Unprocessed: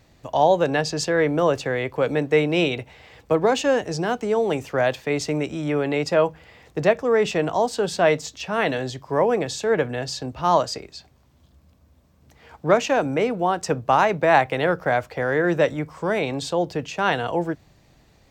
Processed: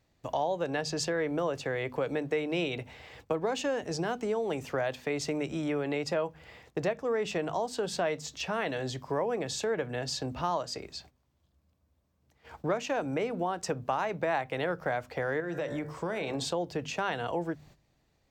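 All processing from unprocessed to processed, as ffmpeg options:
ffmpeg -i in.wav -filter_complex "[0:a]asettb=1/sr,asplit=3[link_01][link_02][link_03];[link_01]atrim=end=15.404[link_04];[link_02]atrim=start=15.4:end=16.45,asetpts=PTS-STARTPTS,afade=type=in:duration=0.004:curve=qsin,afade=type=out:start_time=1.046:duration=0.004:curve=qsin,bandreject=frequency=64.08:width_type=h:width=4,bandreject=frequency=128.16:width_type=h:width=4,bandreject=frequency=192.24:width_type=h:width=4,bandreject=frequency=256.32:width_type=h:width=4,bandreject=frequency=320.4:width_type=h:width=4,bandreject=frequency=384.48:width_type=h:width=4,bandreject=frequency=448.56:width_type=h:width=4,bandreject=frequency=512.64:width_type=h:width=4,bandreject=frequency=576.72:width_type=h:width=4,bandreject=frequency=640.8:width_type=h:width=4,bandreject=frequency=704.88:width_type=h:width=4,bandreject=frequency=768.96:width_type=h:width=4,bandreject=frequency=833.04:width_type=h:width=4,bandreject=frequency=897.12:width_type=h:width=4,bandreject=frequency=961.2:width_type=h:width=4,bandreject=frequency=1025.28:width_type=h:width=4,bandreject=frequency=1089.36:width_type=h:width=4,bandreject=frequency=1153.44:width_type=h:width=4,bandreject=frequency=1217.52:width_type=h:width=4,bandreject=frequency=1281.6:width_type=h:width=4,bandreject=frequency=1345.68:width_type=h:width=4,bandreject=frequency=1409.76:width_type=h:width=4,bandreject=frequency=1473.84:width_type=h:width=4,bandreject=frequency=1537.92:width_type=h:width=4,bandreject=frequency=1602:width_type=h:width=4,bandreject=frequency=1666.08:width_type=h:width=4,bandreject=frequency=1730.16:width_type=h:width=4,bandreject=frequency=1794.24:width_type=h:width=4,bandreject=frequency=1858.32:width_type=h:width=4,bandreject=frequency=1922.4:width_type=h:width=4,acompressor=threshold=-25dB:ratio=4:attack=3.2:release=140:knee=1:detection=peak[link_05];[link_03]atrim=start=16.446[link_06];[link_04][link_05]acrossfade=duration=0.004:curve1=hsin:curve2=qsin[link_07];[link_07][link_06]acrossfade=duration=0.004:curve1=qsin:curve2=hsin,agate=range=-13dB:threshold=-49dB:ratio=16:detection=peak,bandreject=frequency=50:width_type=h:width=6,bandreject=frequency=100:width_type=h:width=6,bandreject=frequency=150:width_type=h:width=6,bandreject=frequency=200:width_type=h:width=6,bandreject=frequency=250:width_type=h:width=6,acompressor=threshold=-28dB:ratio=3,volume=-2dB" out.wav

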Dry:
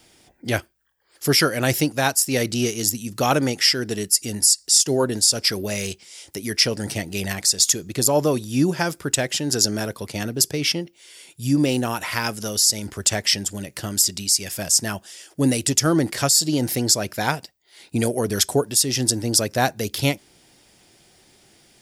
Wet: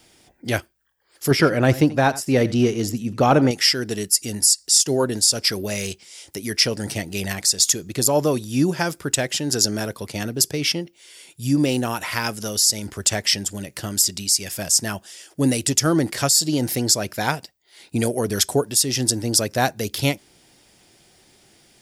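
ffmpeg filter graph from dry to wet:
ffmpeg -i in.wav -filter_complex "[0:a]asettb=1/sr,asplit=3[link_01][link_02][link_03];[link_01]atrim=end=1.314[link_04];[link_02]atrim=start=1.31:end=3.51,asetpts=PTS-STARTPTS,afade=type=in:duration=0.004:curve=qsin,afade=type=out:start_time=2.196:duration=0.004:curve=qsin,lowpass=frequency=1200:poles=1,acontrast=34,aecho=1:1:86:0.133,atrim=end_sample=97020[link_05];[link_03]atrim=start=3.506[link_06];[link_04][link_05]acrossfade=duration=0.004:curve1=hsin:curve2=qsin[link_07];[link_07][link_06]acrossfade=duration=0.004:curve1=qsin:curve2=hsin" out.wav

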